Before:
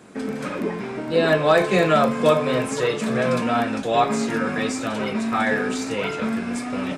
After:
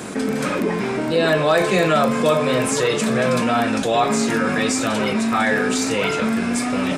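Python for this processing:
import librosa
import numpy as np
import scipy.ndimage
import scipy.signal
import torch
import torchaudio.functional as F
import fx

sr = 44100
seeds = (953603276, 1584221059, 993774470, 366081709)

y = fx.high_shelf(x, sr, hz=4600.0, db=6.5)
y = fx.env_flatten(y, sr, amount_pct=50)
y = y * 10.0 ** (-1.5 / 20.0)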